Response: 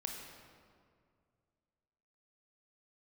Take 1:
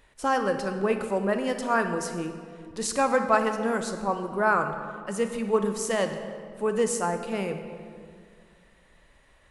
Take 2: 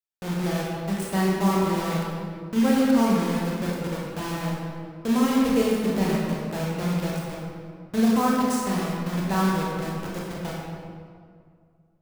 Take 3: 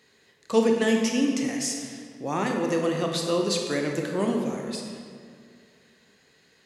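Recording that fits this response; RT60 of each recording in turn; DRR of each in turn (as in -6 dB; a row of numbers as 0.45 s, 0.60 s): 3; 2.2 s, 2.1 s, 2.2 s; 6.5 dB, -4.5 dB, 1.0 dB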